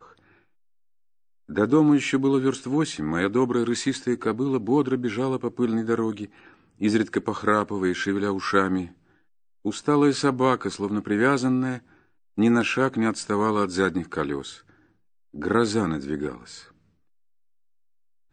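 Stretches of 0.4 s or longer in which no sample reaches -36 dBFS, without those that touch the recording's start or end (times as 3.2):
6.26–6.81
8.87–9.65
11.79–12.38
14.56–15.34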